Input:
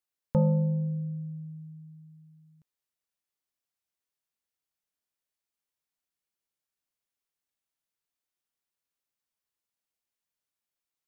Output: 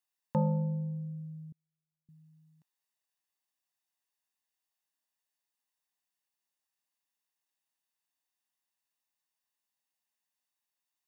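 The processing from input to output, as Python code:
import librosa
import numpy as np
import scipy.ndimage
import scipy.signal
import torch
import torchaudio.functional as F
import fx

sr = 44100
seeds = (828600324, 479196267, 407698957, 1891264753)

y = scipy.signal.sosfilt(scipy.signal.bessel(2, 270.0, 'highpass', norm='mag', fs=sr, output='sos'), x)
y = y + 0.52 * np.pad(y, (int(1.1 * sr / 1000.0), 0))[:len(y)]
y = fx.gate_flip(y, sr, shuts_db=-53.0, range_db=-40, at=(1.52, 2.09))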